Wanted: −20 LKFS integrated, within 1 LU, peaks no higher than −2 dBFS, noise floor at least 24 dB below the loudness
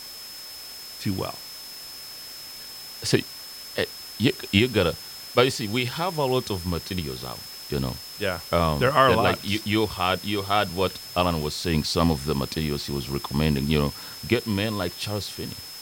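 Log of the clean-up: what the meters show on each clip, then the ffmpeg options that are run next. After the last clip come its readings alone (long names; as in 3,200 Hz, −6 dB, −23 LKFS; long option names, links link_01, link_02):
interfering tone 5,200 Hz; level of the tone −39 dBFS; background noise floor −40 dBFS; target noise floor −49 dBFS; integrated loudness −25.0 LKFS; sample peak −3.0 dBFS; target loudness −20.0 LKFS
→ -af "bandreject=frequency=5200:width=30"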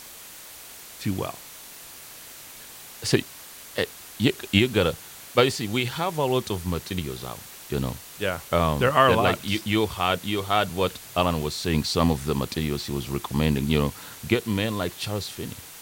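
interfering tone none found; background noise floor −44 dBFS; target noise floor −49 dBFS
→ -af "afftdn=noise_reduction=6:noise_floor=-44"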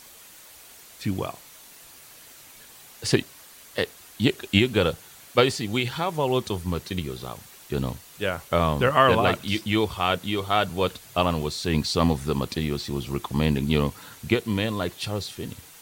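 background noise floor −48 dBFS; target noise floor −49 dBFS
→ -af "afftdn=noise_reduction=6:noise_floor=-48"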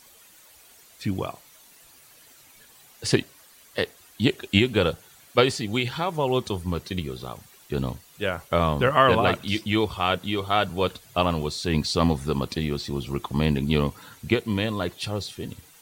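background noise floor −53 dBFS; integrated loudness −25.5 LKFS; sample peak −3.0 dBFS; target loudness −20.0 LKFS
→ -af "volume=5.5dB,alimiter=limit=-2dB:level=0:latency=1"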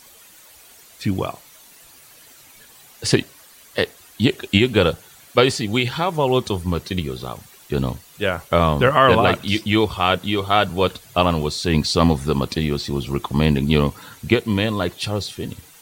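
integrated loudness −20.0 LKFS; sample peak −2.0 dBFS; background noise floor −48 dBFS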